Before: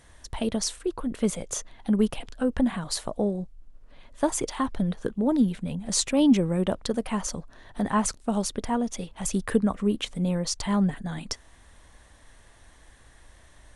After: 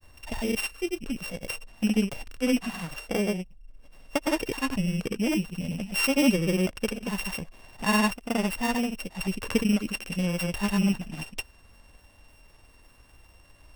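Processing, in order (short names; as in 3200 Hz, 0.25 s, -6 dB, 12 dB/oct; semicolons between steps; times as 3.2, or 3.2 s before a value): sample sorter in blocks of 16 samples; grains, pitch spread up and down by 0 st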